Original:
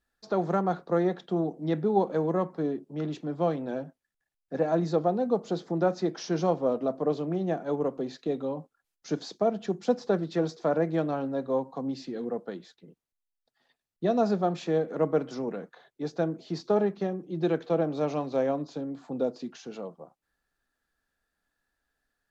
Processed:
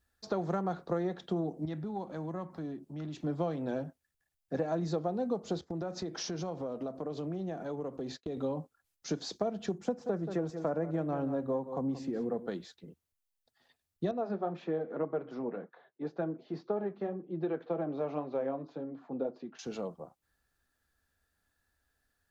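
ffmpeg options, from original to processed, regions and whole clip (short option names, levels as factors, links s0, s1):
-filter_complex "[0:a]asettb=1/sr,asplit=3[s0][s1][s2];[s0]atrim=end=1.654[s3];[s1]atrim=start=1.65:end=3.24,asetpts=PTS-STARTPTS,afade=t=in:d=0.004:c=qsin,afade=t=out:st=1.586:d=0.004:c=qsin,equalizer=f=450:t=o:w=0.41:g=-9.5,acompressor=threshold=0.00631:ratio=2:attack=3.2:release=140:knee=1:detection=peak[s4];[s2]atrim=start=3.236[s5];[s3][s4]acrossfade=d=0.004:c1=hsin:c2=qsin[s6];[s6][s5]acrossfade=d=0.004:c1=qsin:c2=hsin,asettb=1/sr,asplit=3[s7][s8][s9];[s7]atrim=end=5.614[s10];[s8]atrim=start=5.61:end=8.37,asetpts=PTS-STARTPTS,afade=t=in:d=0.004:c=qsin,afade=t=out:st=2.756:d=0.004:c=qsin,agate=range=0.0224:threshold=0.00708:ratio=3:release=100:detection=peak,acompressor=threshold=0.0178:ratio=5:attack=3.2:release=140:knee=1:detection=peak[s11];[s9]atrim=start=8.366[s12];[s10][s11]acrossfade=d=0.004:c1=hsin:c2=qsin[s13];[s13][s12]acrossfade=d=0.004:c1=qsin:c2=hsin,asettb=1/sr,asplit=3[s14][s15][s16];[s14]atrim=end=9.784[s17];[s15]atrim=start=9.78:end=12.47,asetpts=PTS-STARTPTS,afade=t=in:d=0.004:c=qsin,afade=t=out:st=2.686:d=0.004:c=qsin,equalizer=f=4200:w=1:g=-13,aecho=1:1:179:0.211,atrim=end_sample=118629[s18];[s16]atrim=start=12.466[s19];[s17][s18]acrossfade=d=0.004:c1=hsin:c2=qsin[s20];[s20][s19]acrossfade=d=0.004:c1=qsin:c2=hsin,asettb=1/sr,asplit=3[s21][s22][s23];[s21]atrim=end=14.114[s24];[s22]atrim=start=14.11:end=19.59,asetpts=PTS-STARTPTS,afade=t=in:d=0.004:c=qsin,afade=t=out:st=5.476:d=0.004:c=qsin,flanger=delay=5:depth=3.6:regen=-45:speed=1.9:shape=sinusoidal,highpass=210,lowpass=2000[s25];[s23]atrim=start=19.586[s26];[s24][s25]acrossfade=d=0.004:c1=hsin:c2=qsin[s27];[s27][s26]acrossfade=d=0.004:c1=qsin:c2=hsin,equalizer=f=79:w=1.5:g=13,acompressor=threshold=0.0355:ratio=6,highshelf=f=6100:g=6"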